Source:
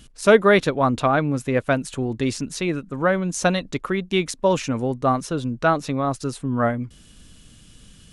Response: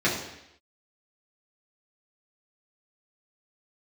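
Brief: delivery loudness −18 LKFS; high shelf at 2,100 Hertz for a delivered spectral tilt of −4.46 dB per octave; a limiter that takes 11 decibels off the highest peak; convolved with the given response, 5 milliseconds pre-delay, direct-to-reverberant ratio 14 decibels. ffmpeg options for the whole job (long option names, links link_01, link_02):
-filter_complex "[0:a]highshelf=frequency=2100:gain=7,alimiter=limit=-12.5dB:level=0:latency=1,asplit=2[link_01][link_02];[1:a]atrim=start_sample=2205,adelay=5[link_03];[link_02][link_03]afir=irnorm=-1:irlink=0,volume=-29dB[link_04];[link_01][link_04]amix=inputs=2:normalize=0,volume=5.5dB"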